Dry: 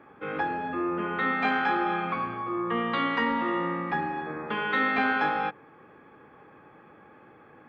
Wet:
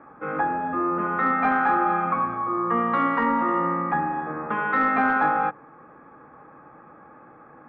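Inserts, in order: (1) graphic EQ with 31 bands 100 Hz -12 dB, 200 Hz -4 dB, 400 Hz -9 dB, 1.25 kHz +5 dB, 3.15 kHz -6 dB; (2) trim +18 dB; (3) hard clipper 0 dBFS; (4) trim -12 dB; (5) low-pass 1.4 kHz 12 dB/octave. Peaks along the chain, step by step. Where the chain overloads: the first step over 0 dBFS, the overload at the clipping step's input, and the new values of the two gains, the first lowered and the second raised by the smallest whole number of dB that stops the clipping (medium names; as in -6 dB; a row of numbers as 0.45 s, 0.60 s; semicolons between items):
-13.0 dBFS, +5.0 dBFS, 0.0 dBFS, -12.0 dBFS, -12.0 dBFS; step 2, 5.0 dB; step 2 +13 dB, step 4 -7 dB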